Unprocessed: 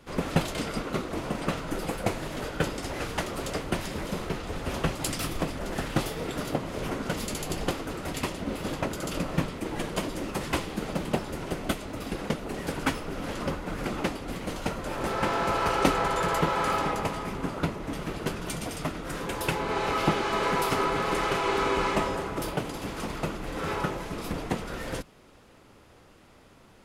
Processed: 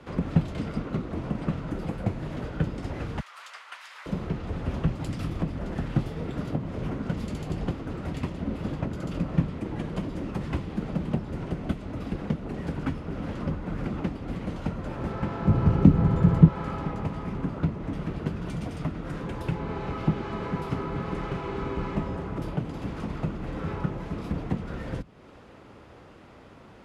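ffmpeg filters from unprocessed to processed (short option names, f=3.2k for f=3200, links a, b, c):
-filter_complex "[0:a]asettb=1/sr,asplit=3[a][b][c];[a]atrim=end=3.204[d];[b]atrim=start=3.2:end=4.06,asetpts=PTS-STARTPTS,afade=t=in:d=0.004:c=qsin,afade=t=out:st=0.856:d=0.004:c=qsin,highpass=f=1.1k:w=0.5412,highpass=f=1.1k:w=1.3066[e];[c]atrim=start=4.056[f];[d][e]acrossfade=d=0.004:c1=hsin:c2=qsin[g];[g][f]acrossfade=d=0.004:c1=qsin:c2=hsin,asettb=1/sr,asplit=3[h][i][j];[h]atrim=end=15.454[k];[i]atrim=start=15.45:end=16.48,asetpts=PTS-STARTPTS,afade=t=in:d=0.004:c=qsin,afade=t=out:st=1.026:d=0.004:c=qsin,equalizer=f=130:w=0.4:g=12.5[l];[j]atrim=start=16.476[m];[k][l]acrossfade=d=0.004:c1=hsin:c2=qsin[n];[n][m]acrossfade=d=0.004:c1=qsin:c2=hsin,highpass=44,acrossover=split=230[o][p];[p]acompressor=threshold=-48dB:ratio=2.5[q];[o][q]amix=inputs=2:normalize=0,aemphasis=mode=reproduction:type=75fm,volume=5.5dB"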